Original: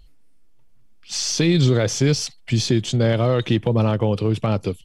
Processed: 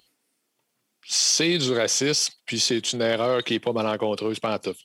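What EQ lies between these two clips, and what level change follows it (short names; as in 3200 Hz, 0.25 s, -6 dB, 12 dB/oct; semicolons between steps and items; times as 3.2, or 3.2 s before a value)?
HPF 260 Hz 12 dB/oct; tilt +1.5 dB/oct; 0.0 dB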